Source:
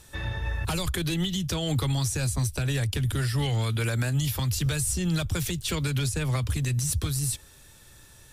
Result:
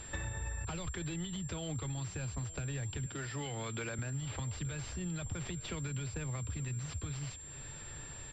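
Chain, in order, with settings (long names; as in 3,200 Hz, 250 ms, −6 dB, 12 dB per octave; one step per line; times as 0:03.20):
0:03.06–0:03.99: high-pass filter 210 Hz 12 dB per octave
downward compressor 16 to 1, threshold −40 dBFS, peak gain reduction 18.5 dB
repeating echo 880 ms, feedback 45%, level −19 dB
switching amplifier with a slow clock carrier 7,400 Hz
level +4 dB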